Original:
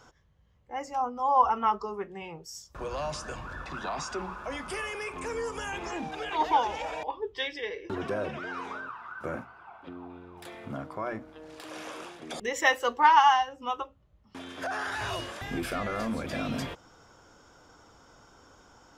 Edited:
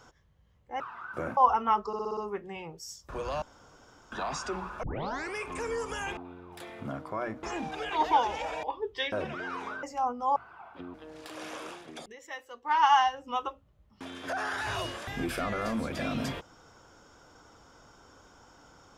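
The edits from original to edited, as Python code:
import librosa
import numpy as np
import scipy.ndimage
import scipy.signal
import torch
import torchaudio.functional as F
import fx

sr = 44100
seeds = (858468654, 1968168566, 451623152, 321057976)

y = fx.edit(x, sr, fx.swap(start_s=0.8, length_s=0.53, other_s=8.87, other_length_s=0.57),
    fx.stutter(start_s=1.83, slice_s=0.06, count=6),
    fx.room_tone_fill(start_s=3.08, length_s=0.7),
    fx.tape_start(start_s=4.49, length_s=0.52),
    fx.cut(start_s=7.52, length_s=0.64),
    fx.move(start_s=10.02, length_s=1.26, to_s=5.83),
    fx.fade_down_up(start_s=11.99, length_s=1.46, db=-18.0, fade_s=0.49, curve='qsin'), tone=tone)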